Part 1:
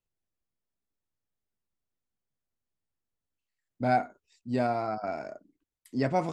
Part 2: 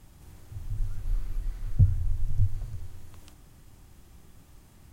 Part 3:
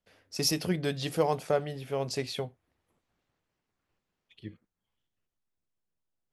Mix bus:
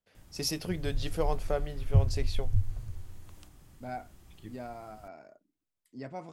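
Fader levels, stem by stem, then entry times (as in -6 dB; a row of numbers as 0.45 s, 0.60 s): -14.0 dB, -2.5 dB, -4.5 dB; 0.00 s, 0.15 s, 0.00 s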